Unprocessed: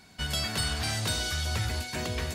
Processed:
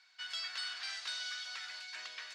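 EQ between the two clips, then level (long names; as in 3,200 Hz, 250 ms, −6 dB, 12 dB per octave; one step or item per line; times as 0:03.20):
Chebyshev band-pass filter 1,400–5,100 Hz, order 2
−7.0 dB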